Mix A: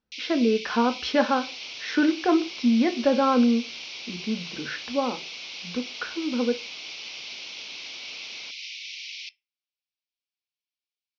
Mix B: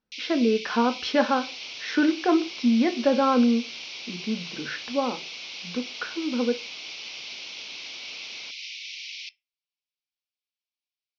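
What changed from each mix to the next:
speech: add bell 70 Hz -8.5 dB 0.64 oct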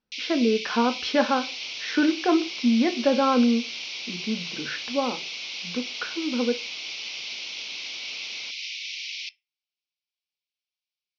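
first sound +3.5 dB

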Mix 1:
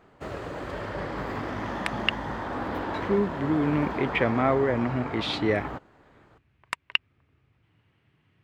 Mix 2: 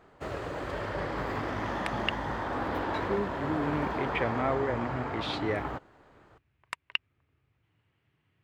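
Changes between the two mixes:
speech -6.0 dB; master: add bell 210 Hz -3.5 dB 0.89 oct

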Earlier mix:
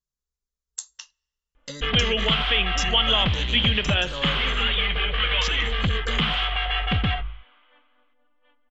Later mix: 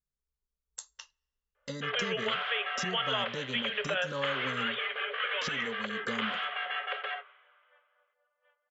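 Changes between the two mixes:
background: add rippled Chebyshev high-pass 400 Hz, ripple 9 dB; master: add high shelf 2800 Hz -11 dB

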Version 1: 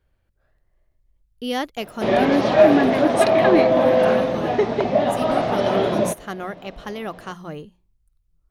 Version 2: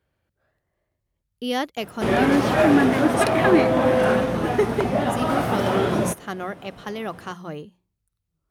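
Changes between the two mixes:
background: remove speaker cabinet 160–5800 Hz, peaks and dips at 620 Hz +8 dB, 1400 Hz -5 dB, 3900 Hz +4 dB; master: add HPF 100 Hz 12 dB/oct

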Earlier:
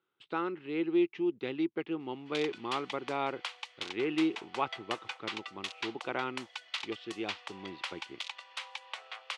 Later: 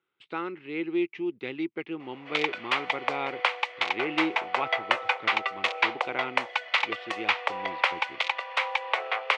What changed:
background: remove differentiator; master: add bell 2200 Hz +7.5 dB 0.55 oct

